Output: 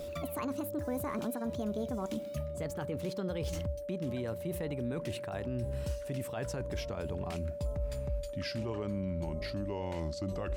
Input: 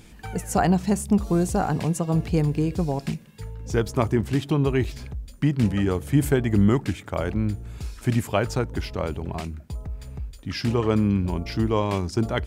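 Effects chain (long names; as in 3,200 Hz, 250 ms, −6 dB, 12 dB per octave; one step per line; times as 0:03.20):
gliding playback speed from 152% → 84%
reversed playback
downward compressor 5 to 1, threshold −31 dBFS, peak gain reduction 15.5 dB
reversed playback
brickwall limiter −28.5 dBFS, peak gain reduction 10 dB
steady tone 580 Hz −39 dBFS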